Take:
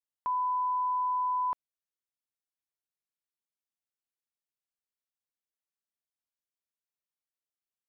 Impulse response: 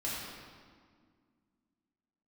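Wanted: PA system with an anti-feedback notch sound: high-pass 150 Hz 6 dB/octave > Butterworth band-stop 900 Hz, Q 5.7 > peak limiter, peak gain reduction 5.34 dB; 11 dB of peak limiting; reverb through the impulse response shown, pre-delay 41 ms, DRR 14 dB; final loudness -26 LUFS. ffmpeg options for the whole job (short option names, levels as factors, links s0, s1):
-filter_complex "[0:a]alimiter=level_in=4.47:limit=0.0631:level=0:latency=1,volume=0.224,asplit=2[s0][s1];[1:a]atrim=start_sample=2205,adelay=41[s2];[s1][s2]afir=irnorm=-1:irlink=0,volume=0.119[s3];[s0][s3]amix=inputs=2:normalize=0,highpass=f=150:p=1,asuperstop=centerf=900:order=8:qfactor=5.7,volume=7.94,alimiter=limit=0.0794:level=0:latency=1"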